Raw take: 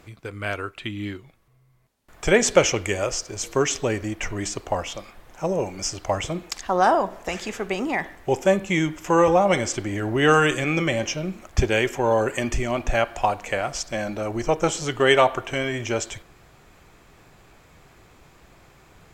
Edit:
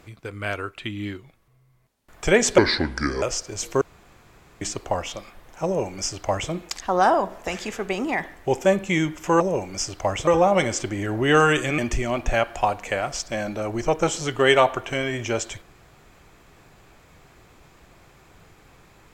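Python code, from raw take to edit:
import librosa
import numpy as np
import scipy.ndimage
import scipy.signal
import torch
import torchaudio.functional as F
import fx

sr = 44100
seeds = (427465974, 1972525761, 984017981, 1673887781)

y = fx.edit(x, sr, fx.speed_span(start_s=2.58, length_s=0.45, speed=0.7),
    fx.room_tone_fill(start_s=3.62, length_s=0.8),
    fx.duplicate(start_s=5.45, length_s=0.87, to_s=9.21),
    fx.cut(start_s=10.72, length_s=1.67), tone=tone)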